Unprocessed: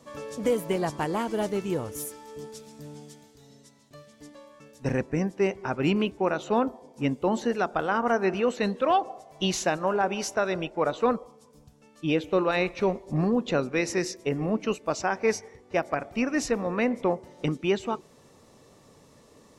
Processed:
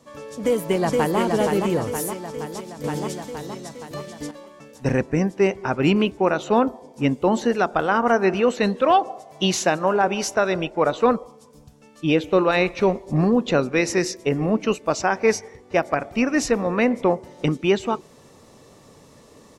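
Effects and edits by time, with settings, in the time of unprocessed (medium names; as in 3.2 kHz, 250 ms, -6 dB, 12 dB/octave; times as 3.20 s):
0.36–1.19 s: echo throw 470 ms, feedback 60%, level -4 dB
2.84–4.31 s: gain +8.5 dB
8.97–10.07 s: high-pass 94 Hz
whole clip: level rider gain up to 6 dB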